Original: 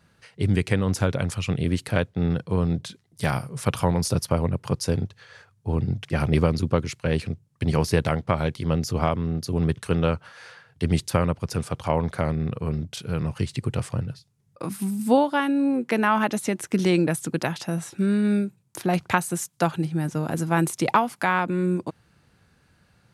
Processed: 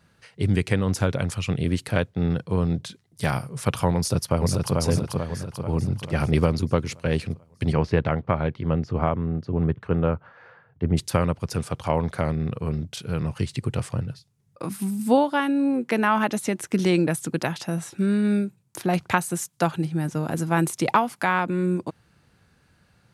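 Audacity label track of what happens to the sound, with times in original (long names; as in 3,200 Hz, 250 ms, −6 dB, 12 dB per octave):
3.970000	4.760000	delay throw 440 ms, feedback 55%, level −2.5 dB
7.720000	10.960000	low-pass filter 2,700 Hz → 1,200 Hz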